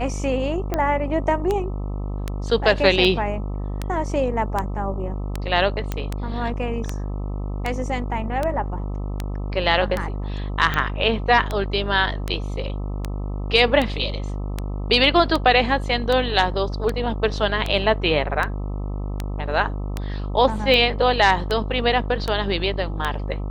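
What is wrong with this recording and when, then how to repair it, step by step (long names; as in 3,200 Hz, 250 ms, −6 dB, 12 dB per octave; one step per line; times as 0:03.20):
mains buzz 50 Hz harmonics 26 −27 dBFS
scratch tick 78 rpm −10 dBFS
0:05.92: click −11 dBFS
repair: click removal
hum removal 50 Hz, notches 26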